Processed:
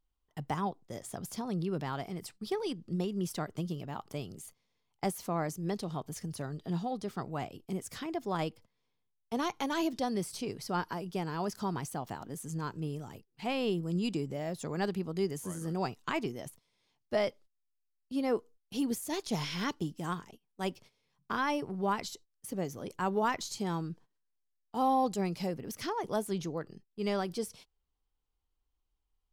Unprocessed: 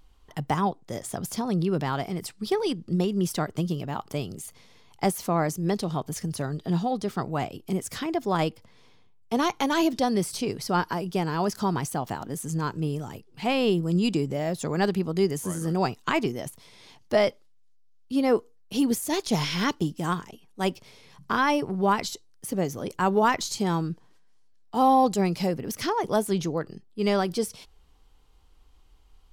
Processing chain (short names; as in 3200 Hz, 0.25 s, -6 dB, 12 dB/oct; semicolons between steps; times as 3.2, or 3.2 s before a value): gate -44 dBFS, range -16 dB; gain -8.5 dB